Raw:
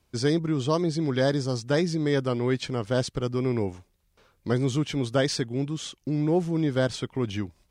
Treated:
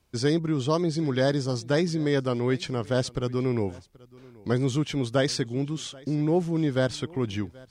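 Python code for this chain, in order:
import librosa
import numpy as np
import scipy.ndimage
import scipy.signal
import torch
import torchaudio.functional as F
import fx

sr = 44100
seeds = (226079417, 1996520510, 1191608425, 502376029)

y = x + 10.0 ** (-23.5 / 20.0) * np.pad(x, (int(780 * sr / 1000.0), 0))[:len(x)]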